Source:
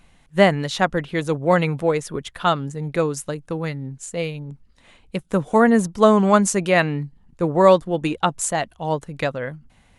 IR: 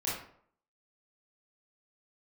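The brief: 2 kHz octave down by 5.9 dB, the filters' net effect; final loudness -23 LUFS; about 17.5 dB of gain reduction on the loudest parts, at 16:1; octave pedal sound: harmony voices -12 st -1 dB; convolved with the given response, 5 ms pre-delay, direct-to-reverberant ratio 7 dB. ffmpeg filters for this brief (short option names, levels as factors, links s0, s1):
-filter_complex "[0:a]equalizer=f=2000:t=o:g=-7.5,acompressor=threshold=0.0501:ratio=16,asplit=2[s0][s1];[1:a]atrim=start_sample=2205,adelay=5[s2];[s1][s2]afir=irnorm=-1:irlink=0,volume=0.237[s3];[s0][s3]amix=inputs=2:normalize=0,asplit=2[s4][s5];[s5]asetrate=22050,aresample=44100,atempo=2,volume=0.891[s6];[s4][s6]amix=inputs=2:normalize=0,volume=2"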